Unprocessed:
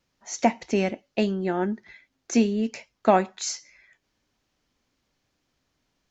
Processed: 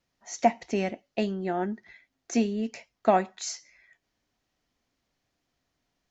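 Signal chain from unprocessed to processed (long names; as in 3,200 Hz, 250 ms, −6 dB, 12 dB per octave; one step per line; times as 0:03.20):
hollow resonant body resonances 700/1,900 Hz, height 7 dB
level −4.5 dB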